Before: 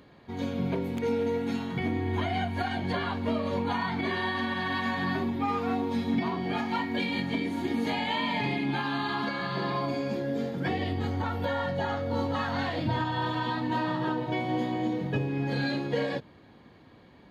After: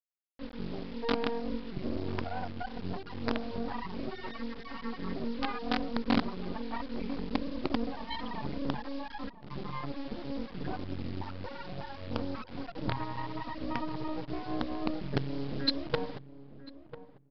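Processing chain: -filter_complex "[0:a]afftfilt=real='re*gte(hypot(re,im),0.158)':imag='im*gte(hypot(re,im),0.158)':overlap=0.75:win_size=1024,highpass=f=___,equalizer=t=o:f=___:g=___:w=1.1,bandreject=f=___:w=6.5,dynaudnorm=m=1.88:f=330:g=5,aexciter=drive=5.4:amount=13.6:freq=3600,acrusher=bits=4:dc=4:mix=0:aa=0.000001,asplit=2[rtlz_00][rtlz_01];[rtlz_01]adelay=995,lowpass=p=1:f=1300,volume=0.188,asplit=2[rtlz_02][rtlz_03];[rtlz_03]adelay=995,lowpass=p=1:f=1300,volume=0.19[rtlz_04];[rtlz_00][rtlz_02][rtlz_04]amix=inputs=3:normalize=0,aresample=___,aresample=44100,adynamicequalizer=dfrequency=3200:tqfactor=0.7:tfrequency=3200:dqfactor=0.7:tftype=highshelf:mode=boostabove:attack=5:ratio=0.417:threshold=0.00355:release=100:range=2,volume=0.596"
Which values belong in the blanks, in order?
97, 2400, -14.5, 570, 11025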